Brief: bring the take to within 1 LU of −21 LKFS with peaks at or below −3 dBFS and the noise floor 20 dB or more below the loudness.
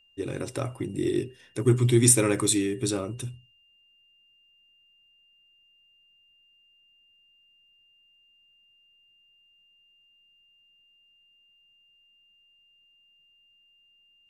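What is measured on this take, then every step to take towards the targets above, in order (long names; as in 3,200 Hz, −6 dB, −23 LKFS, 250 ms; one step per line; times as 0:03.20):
interfering tone 2,800 Hz; level of the tone −60 dBFS; integrated loudness −25.0 LKFS; sample peak −4.5 dBFS; target loudness −21.0 LKFS
→ notch filter 2,800 Hz, Q 30
level +4 dB
brickwall limiter −3 dBFS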